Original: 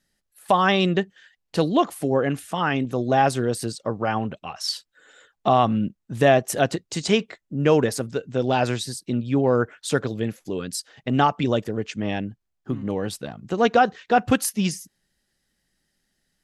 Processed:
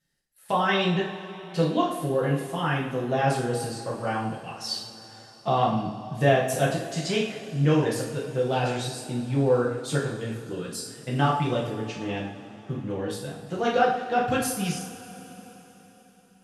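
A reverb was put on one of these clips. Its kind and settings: two-slope reverb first 0.57 s, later 4.3 s, from -18 dB, DRR -5.5 dB; gain -10 dB

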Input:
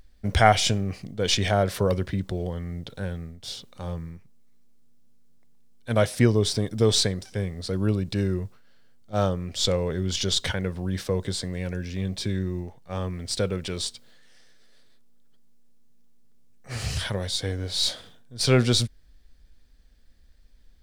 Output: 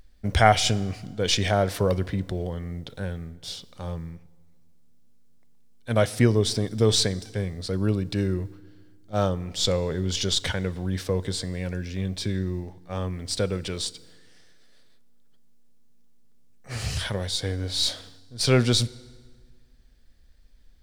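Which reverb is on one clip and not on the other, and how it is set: FDN reverb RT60 1.6 s, low-frequency decay 1.25×, high-frequency decay 0.8×, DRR 19 dB

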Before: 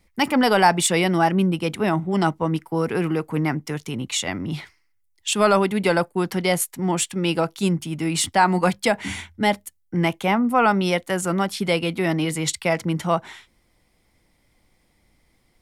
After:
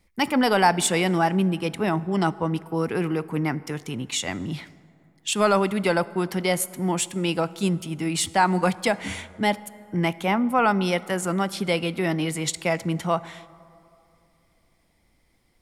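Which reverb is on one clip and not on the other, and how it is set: plate-style reverb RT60 2.8 s, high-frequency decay 0.45×, DRR 18 dB; gain -2.5 dB

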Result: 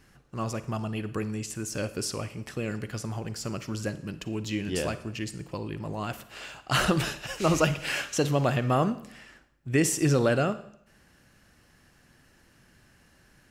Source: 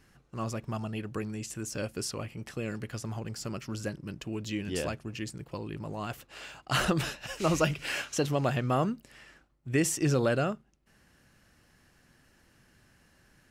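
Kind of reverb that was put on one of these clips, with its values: Schroeder reverb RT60 0.69 s, DRR 13 dB; gain +3 dB

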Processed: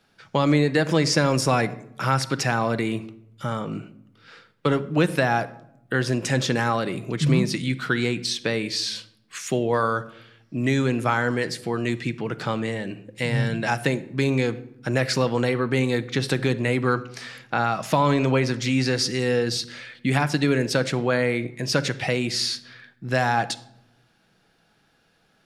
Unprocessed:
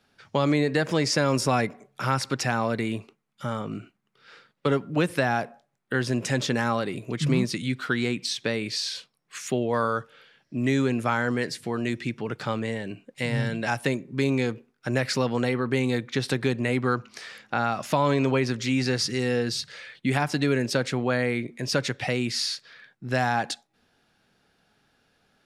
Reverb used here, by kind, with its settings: shoebox room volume 2400 m³, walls furnished, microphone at 0.68 m; gain +2.5 dB

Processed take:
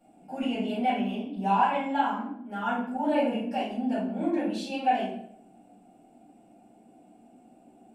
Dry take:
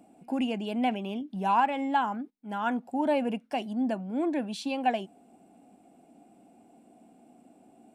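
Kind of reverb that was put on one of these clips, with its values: shoebox room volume 140 m³, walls mixed, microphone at 4.4 m; gain -13.5 dB

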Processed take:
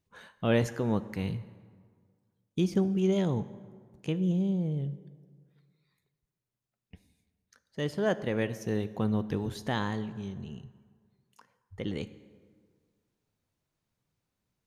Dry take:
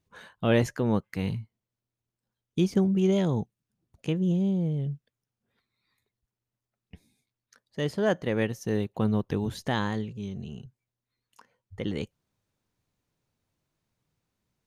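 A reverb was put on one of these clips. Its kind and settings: plate-style reverb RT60 1.8 s, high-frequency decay 0.6×, DRR 13.5 dB; gain -3 dB

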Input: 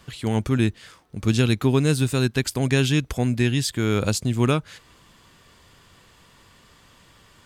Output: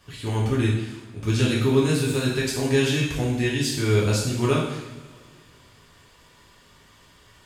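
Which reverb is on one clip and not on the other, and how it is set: two-slope reverb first 0.82 s, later 2.6 s, from -18 dB, DRR -6 dB; gain -7 dB

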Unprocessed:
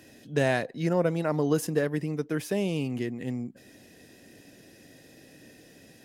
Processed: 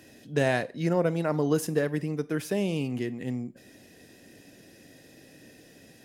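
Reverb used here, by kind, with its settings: Schroeder reverb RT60 0.37 s, combs from 32 ms, DRR 18 dB

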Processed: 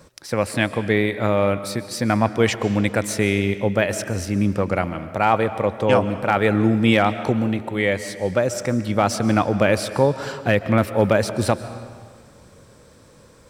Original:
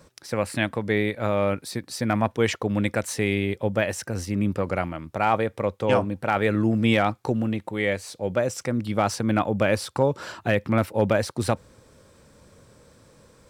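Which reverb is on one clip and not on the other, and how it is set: digital reverb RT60 1.7 s, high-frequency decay 0.85×, pre-delay 95 ms, DRR 12.5 dB; gain +4 dB

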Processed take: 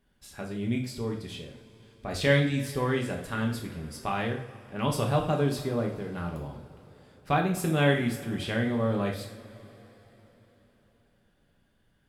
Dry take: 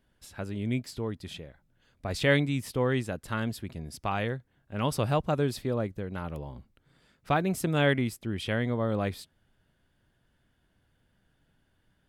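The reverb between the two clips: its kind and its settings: two-slope reverb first 0.49 s, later 4.3 s, from -21 dB, DRR 0.5 dB; gain -2 dB

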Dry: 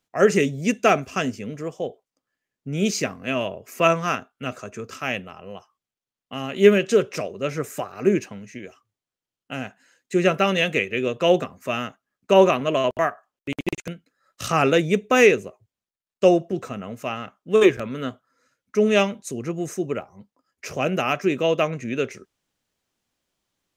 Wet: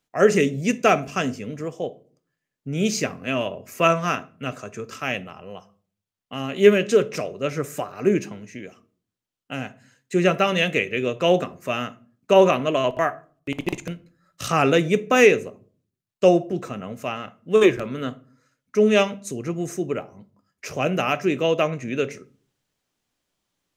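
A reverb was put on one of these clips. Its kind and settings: shoebox room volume 360 m³, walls furnished, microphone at 0.4 m

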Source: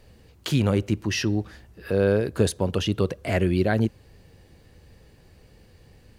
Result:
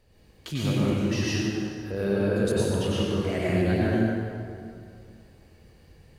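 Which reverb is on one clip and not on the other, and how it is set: plate-style reverb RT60 2.3 s, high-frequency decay 0.65×, pre-delay 85 ms, DRR -7.5 dB; gain -9.5 dB

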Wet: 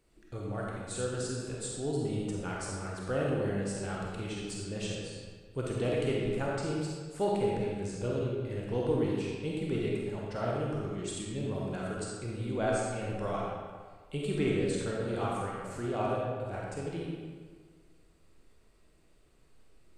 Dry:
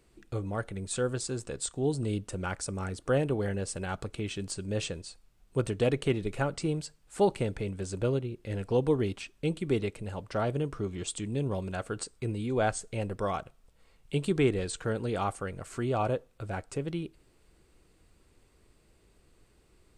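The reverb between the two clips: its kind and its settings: digital reverb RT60 1.6 s, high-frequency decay 0.75×, pre-delay 5 ms, DRR -4 dB; gain -7 dB

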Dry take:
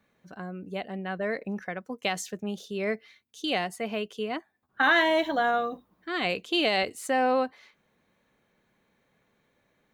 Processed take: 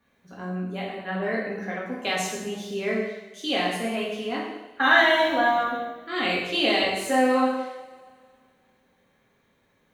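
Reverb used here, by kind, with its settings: two-slope reverb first 0.9 s, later 2.3 s, from -18 dB, DRR -5.5 dB; gain -2.5 dB

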